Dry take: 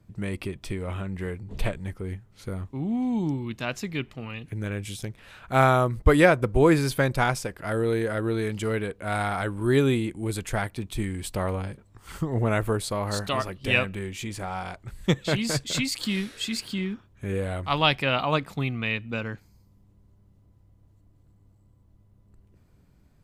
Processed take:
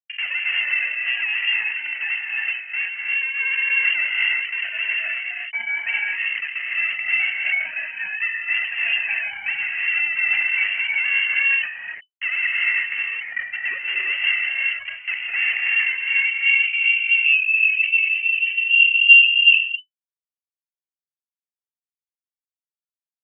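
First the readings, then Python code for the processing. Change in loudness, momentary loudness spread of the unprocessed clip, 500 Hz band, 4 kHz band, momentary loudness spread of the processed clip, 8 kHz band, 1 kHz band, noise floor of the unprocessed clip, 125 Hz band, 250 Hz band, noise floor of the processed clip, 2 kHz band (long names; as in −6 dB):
+8.5 dB, 14 LU, below −25 dB, +11.5 dB, 10 LU, below −40 dB, −14.0 dB, −59 dBFS, below −35 dB, below −35 dB, below −85 dBFS, +15.0 dB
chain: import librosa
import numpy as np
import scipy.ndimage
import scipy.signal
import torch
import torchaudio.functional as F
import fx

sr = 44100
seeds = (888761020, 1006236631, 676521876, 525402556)

y = fx.sine_speech(x, sr)
y = fx.env_lowpass_down(y, sr, base_hz=1200.0, full_db=-22.5)
y = fx.tilt_eq(y, sr, slope=-3.0)
y = fx.over_compress(y, sr, threshold_db=-24.0, ratio=-0.5)
y = fx.chorus_voices(y, sr, voices=2, hz=0.13, base_ms=10, depth_ms=1.4, mix_pct=70)
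y = fx.vowel_filter(y, sr, vowel='u')
y = fx.fuzz(y, sr, gain_db=49.0, gate_db=-48.0)
y = fx.filter_sweep_lowpass(y, sr, from_hz=1100.0, to_hz=220.0, start_s=15.83, end_s=18.59, q=3.7)
y = fx.rev_gated(y, sr, seeds[0], gate_ms=400, shape='rising', drr_db=-3.5)
y = fx.freq_invert(y, sr, carrier_hz=3000)
y = fx.sustainer(y, sr, db_per_s=99.0)
y = y * librosa.db_to_amplitude(-10.5)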